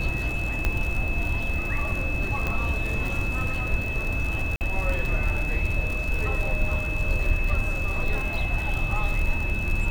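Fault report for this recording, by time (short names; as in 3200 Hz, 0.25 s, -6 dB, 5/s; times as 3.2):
crackle 74/s -28 dBFS
tone 2600 Hz -30 dBFS
0.65 pop -11 dBFS
2.47 pop -14 dBFS
4.56–4.61 gap 49 ms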